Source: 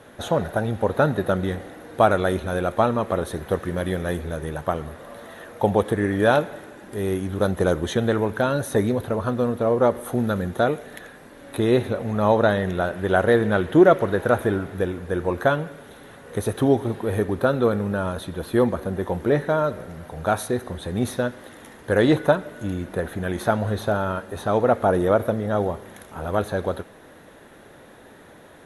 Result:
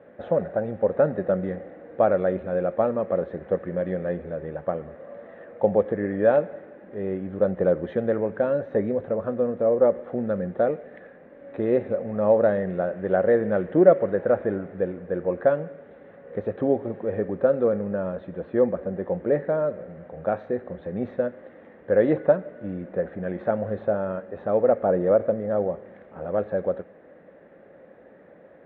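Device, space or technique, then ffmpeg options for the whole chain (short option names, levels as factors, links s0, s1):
bass cabinet: -af "highpass=68,equalizer=f=85:t=q:w=4:g=-8,equalizer=f=130:t=q:w=4:g=-7,equalizer=f=180:t=q:w=4:g=5,equalizer=f=540:t=q:w=4:g=10,equalizer=f=970:t=q:w=4:g=-7,equalizer=f=1400:t=q:w=4:g=-5,lowpass=f=2100:w=0.5412,lowpass=f=2100:w=1.3066,volume=0.531"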